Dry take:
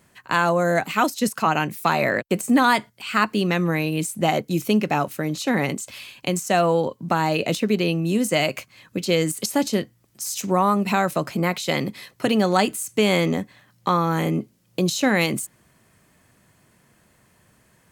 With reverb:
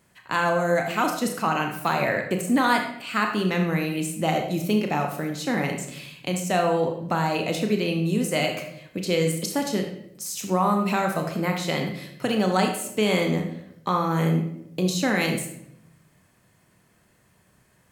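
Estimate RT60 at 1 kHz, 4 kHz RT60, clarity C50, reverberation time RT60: 0.65 s, 0.55 s, 6.0 dB, 0.80 s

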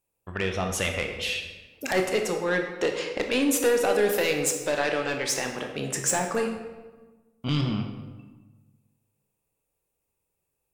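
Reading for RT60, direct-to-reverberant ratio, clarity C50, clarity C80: 1.2 s, 3.5 dB, 6.0 dB, 7.5 dB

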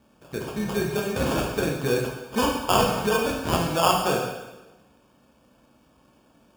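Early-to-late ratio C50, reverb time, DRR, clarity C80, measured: 3.5 dB, 1.1 s, -0.5 dB, 6.0 dB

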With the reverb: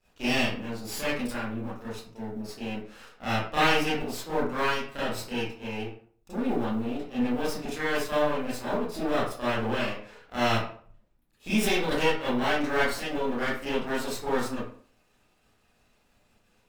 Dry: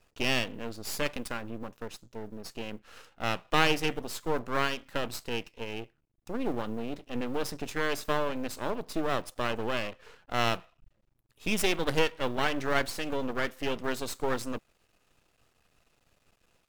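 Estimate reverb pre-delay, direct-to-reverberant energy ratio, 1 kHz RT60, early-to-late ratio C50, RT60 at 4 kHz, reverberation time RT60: 27 ms, -12.0 dB, 0.50 s, -0.5 dB, 0.30 s, 0.50 s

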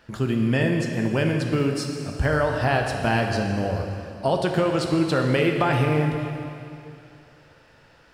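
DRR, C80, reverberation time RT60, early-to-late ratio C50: 2.0 dB, 4.5 dB, 2.7 s, 3.5 dB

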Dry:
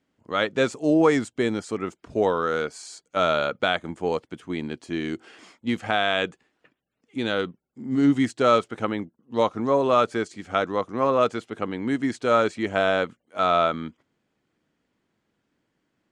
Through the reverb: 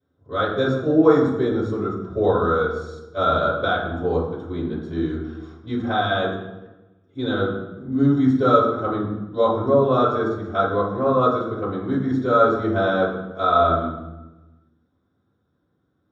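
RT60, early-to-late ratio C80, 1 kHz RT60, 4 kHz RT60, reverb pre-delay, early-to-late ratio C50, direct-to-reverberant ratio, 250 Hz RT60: 1.1 s, 6.0 dB, 1.0 s, 0.75 s, 3 ms, 3.0 dB, -13.5 dB, 1.4 s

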